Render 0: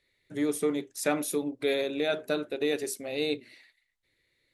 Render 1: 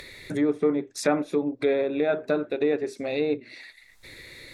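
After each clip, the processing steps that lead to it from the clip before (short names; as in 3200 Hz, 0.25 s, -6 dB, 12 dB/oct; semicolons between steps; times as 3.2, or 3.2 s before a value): treble ducked by the level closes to 1600 Hz, closed at -26 dBFS; notch 3000 Hz, Q 6.8; upward compressor, threshold -30 dBFS; gain +5 dB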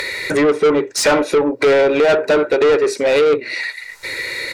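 bell 3400 Hz -9 dB 0.25 oct; comb 2.1 ms, depth 43%; overdrive pedal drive 24 dB, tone 5500 Hz, clips at -9.5 dBFS; gain +4 dB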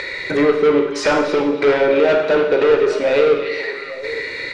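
air absorption 130 m; delay with a stepping band-pass 0.287 s, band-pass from 3200 Hz, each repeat -1.4 oct, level -7 dB; on a send at -4 dB: reverb RT60 0.85 s, pre-delay 31 ms; on the sum: gain -2 dB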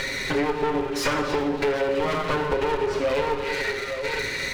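minimum comb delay 7.4 ms; compressor, threshold -21 dBFS, peak gain reduction 10 dB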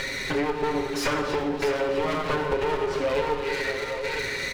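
echo 0.637 s -10 dB; gain -2 dB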